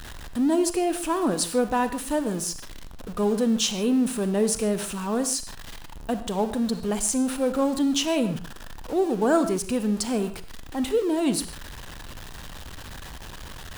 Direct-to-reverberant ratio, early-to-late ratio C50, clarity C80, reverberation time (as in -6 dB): 10.0 dB, 11.0 dB, 13.0 dB, not exponential